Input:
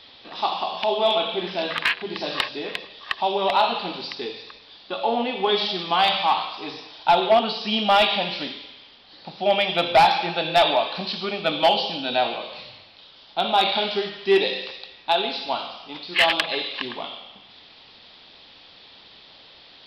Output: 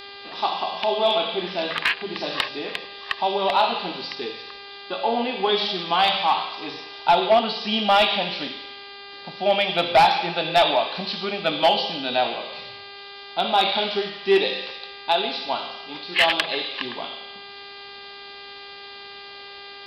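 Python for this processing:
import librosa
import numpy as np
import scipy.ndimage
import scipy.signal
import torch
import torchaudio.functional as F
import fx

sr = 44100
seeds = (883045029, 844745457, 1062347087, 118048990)

y = fx.dmg_buzz(x, sr, base_hz=400.0, harmonics=12, level_db=-41.0, tilt_db=-1, odd_only=False)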